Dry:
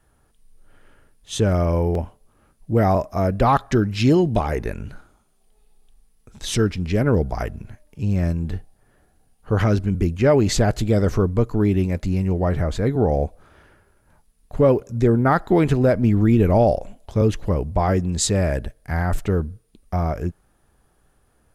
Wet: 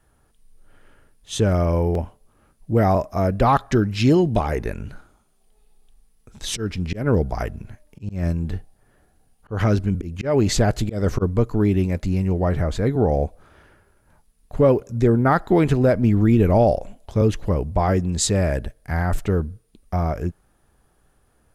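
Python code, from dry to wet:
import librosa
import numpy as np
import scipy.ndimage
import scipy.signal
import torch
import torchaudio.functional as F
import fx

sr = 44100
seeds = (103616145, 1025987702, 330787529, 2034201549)

y = fx.auto_swell(x, sr, attack_ms=175.0, at=(6.55, 11.21), fade=0.02)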